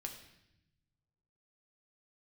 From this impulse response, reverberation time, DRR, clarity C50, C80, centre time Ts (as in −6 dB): 0.85 s, 2.5 dB, 8.0 dB, 10.0 dB, 21 ms